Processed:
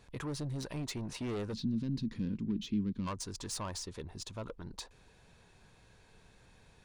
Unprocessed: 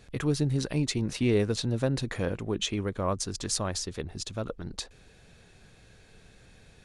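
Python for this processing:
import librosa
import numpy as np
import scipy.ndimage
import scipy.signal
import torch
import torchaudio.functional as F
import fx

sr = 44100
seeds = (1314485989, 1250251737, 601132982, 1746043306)

y = fx.peak_eq(x, sr, hz=970.0, db=11.0, octaves=0.37)
y = 10.0 ** (-27.0 / 20.0) * np.tanh(y / 10.0 ** (-27.0 / 20.0))
y = fx.curve_eq(y, sr, hz=(120.0, 220.0, 640.0, 4800.0, 7900.0), db=(0, 14, -22, -1, -15), at=(1.53, 3.06), fade=0.02)
y = F.gain(torch.from_numpy(y), -6.5).numpy()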